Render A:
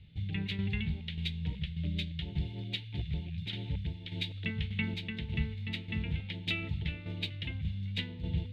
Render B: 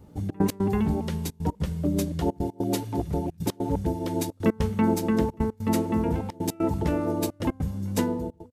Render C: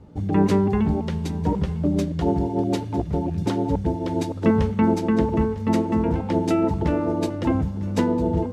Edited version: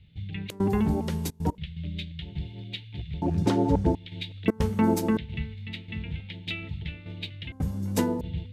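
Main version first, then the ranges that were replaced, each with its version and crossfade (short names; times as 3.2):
A
0.5–1.58 from B
3.22–3.95 from C
4.48–5.17 from B
7.52–8.21 from B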